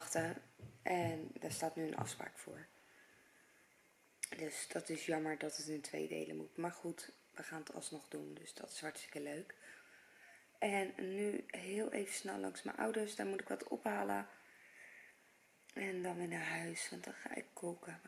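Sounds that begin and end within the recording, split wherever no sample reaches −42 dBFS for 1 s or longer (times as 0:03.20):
0:04.23–0:09.50
0:10.62–0:14.23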